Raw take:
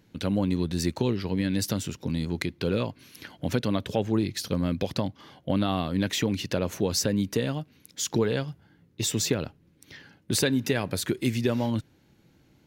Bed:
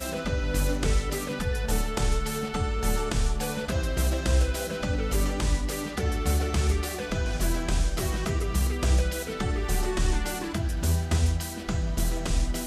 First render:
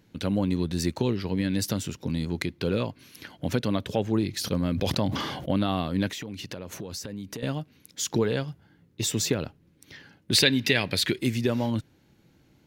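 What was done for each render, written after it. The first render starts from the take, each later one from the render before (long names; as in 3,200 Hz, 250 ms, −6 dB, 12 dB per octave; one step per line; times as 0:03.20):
0:04.31–0:05.56: level that may fall only so fast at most 34 dB per second
0:06.09–0:07.43: downward compressor, threshold −33 dBFS
0:10.33–0:11.19: flat-topped bell 3,000 Hz +10 dB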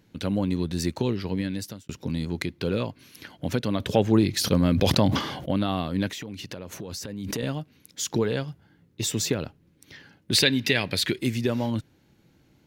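0:01.33–0:01.89: fade out
0:03.80–0:05.19: clip gain +5.5 dB
0:06.80–0:07.56: background raised ahead of every attack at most 24 dB per second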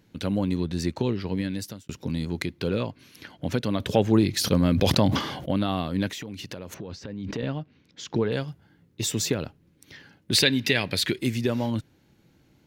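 0:00.60–0:01.32: high-shelf EQ 7,800 Hz −10 dB
0:02.68–0:03.55: high-shelf EQ 9,100 Hz −7.5 dB
0:06.74–0:08.32: high-frequency loss of the air 180 metres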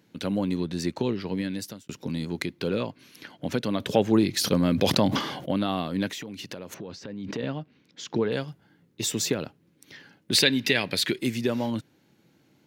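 high-pass filter 150 Hz 12 dB per octave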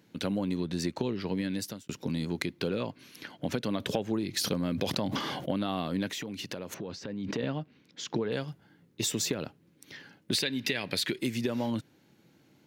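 downward compressor 12 to 1, threshold −26 dBFS, peak gain reduction 12 dB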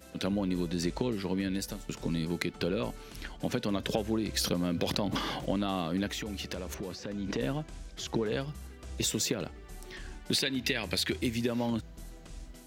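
mix in bed −20.5 dB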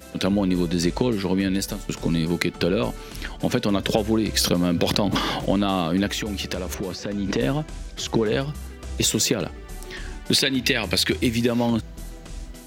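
level +9.5 dB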